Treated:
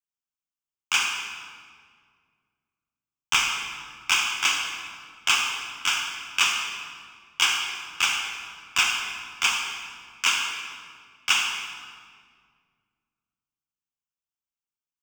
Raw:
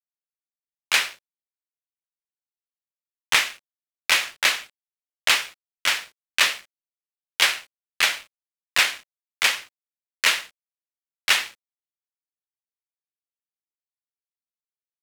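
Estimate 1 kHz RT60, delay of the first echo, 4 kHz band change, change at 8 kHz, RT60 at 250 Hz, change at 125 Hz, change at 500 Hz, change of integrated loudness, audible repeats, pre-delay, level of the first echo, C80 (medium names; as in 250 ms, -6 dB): 1.8 s, no echo, -1.0 dB, +0.5 dB, 2.5 s, no reading, -10.5 dB, -2.5 dB, no echo, 37 ms, no echo, 4.0 dB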